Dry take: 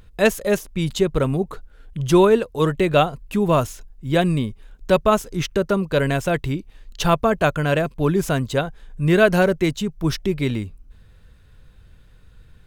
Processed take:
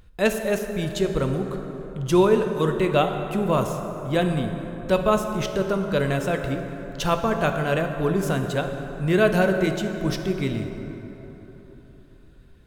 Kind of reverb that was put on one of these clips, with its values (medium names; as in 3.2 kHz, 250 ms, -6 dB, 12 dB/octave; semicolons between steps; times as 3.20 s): plate-style reverb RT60 4 s, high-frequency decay 0.45×, DRR 5 dB; trim -4.5 dB